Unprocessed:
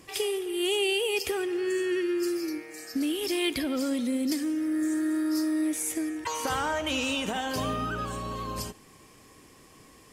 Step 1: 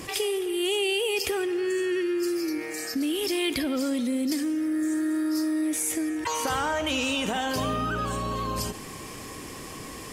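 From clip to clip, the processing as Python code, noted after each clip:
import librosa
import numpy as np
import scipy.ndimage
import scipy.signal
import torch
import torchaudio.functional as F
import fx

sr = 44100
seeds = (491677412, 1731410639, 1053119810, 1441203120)

y = fx.env_flatten(x, sr, amount_pct=50)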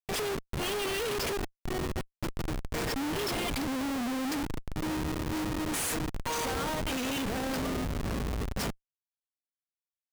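y = fx.high_shelf(x, sr, hz=2500.0, db=9.5)
y = y + 0.77 * np.pad(y, (int(4.3 * sr / 1000.0), 0))[:len(y)]
y = fx.schmitt(y, sr, flips_db=-21.0)
y = y * librosa.db_to_amplitude(-7.0)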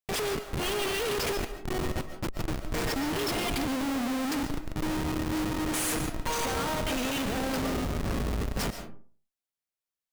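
y = fx.rev_freeverb(x, sr, rt60_s=0.43, hf_ratio=0.5, predelay_ms=95, drr_db=8.0)
y = y * librosa.db_to_amplitude(1.5)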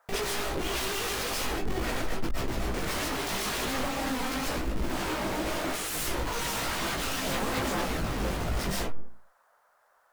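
y = fx.fold_sine(x, sr, drive_db=18, ceiling_db=-20.5)
y = fx.chorus_voices(y, sr, voices=6, hz=1.1, base_ms=18, depth_ms=3.0, mix_pct=45)
y = fx.dmg_noise_band(y, sr, seeds[0], low_hz=520.0, high_hz=1600.0, level_db=-62.0)
y = y * librosa.db_to_amplitude(-4.5)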